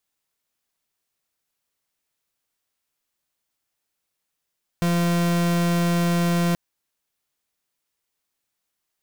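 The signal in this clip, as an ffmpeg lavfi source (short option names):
-f lavfi -i "aevalsrc='0.0944*(2*lt(mod(172*t,1),0.41)-1)':d=1.73:s=44100"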